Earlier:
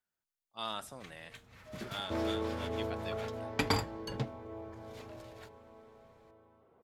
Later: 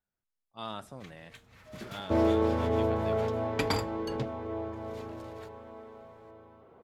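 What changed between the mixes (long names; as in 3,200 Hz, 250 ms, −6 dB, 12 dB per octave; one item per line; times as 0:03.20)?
speech: add spectral tilt −2.5 dB per octave
second sound +9.5 dB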